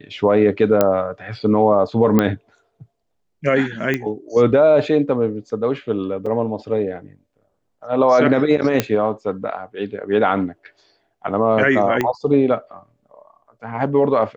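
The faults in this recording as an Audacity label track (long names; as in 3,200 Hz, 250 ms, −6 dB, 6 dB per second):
0.810000	0.810000	click −2 dBFS
2.190000	2.190000	click −4 dBFS
3.940000	3.940000	click −8 dBFS
6.260000	6.270000	drop-out 5.3 ms
8.800000	8.800000	click −2 dBFS
12.010000	12.010000	click −7 dBFS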